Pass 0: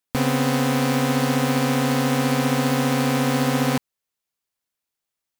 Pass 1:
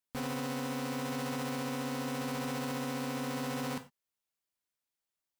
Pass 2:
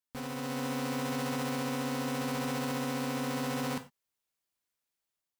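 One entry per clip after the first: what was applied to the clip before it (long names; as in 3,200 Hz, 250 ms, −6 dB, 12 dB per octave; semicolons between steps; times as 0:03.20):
brickwall limiter −22 dBFS, peak gain reduction 11 dB; reverb whose tail is shaped and stops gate 130 ms falling, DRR 7 dB; level −7 dB
automatic gain control gain up to 5.5 dB; level −3 dB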